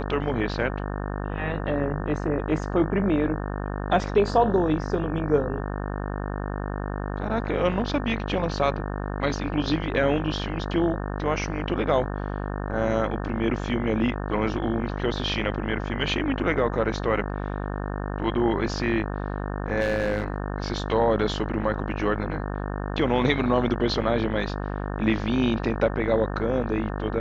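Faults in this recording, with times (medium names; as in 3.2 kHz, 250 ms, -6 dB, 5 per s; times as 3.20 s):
buzz 50 Hz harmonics 36 -30 dBFS
19.80–20.36 s: clipped -19 dBFS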